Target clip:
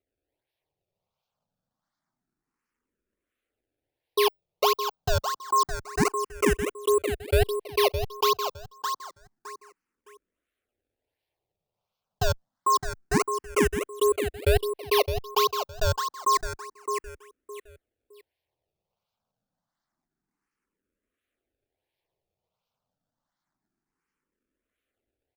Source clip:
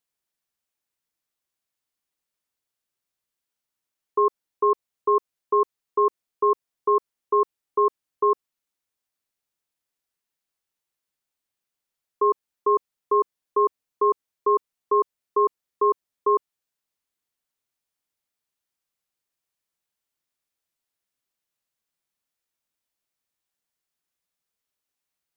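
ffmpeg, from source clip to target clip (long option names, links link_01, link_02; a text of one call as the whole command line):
ffmpeg -i in.wav -filter_complex "[0:a]acrusher=samples=25:mix=1:aa=0.000001:lfo=1:lforange=40:lforate=1.4,aecho=1:1:613|1226|1839:0.422|0.11|0.0285,asplit=2[link_01][link_02];[link_02]afreqshift=0.28[link_03];[link_01][link_03]amix=inputs=2:normalize=1,volume=1dB" out.wav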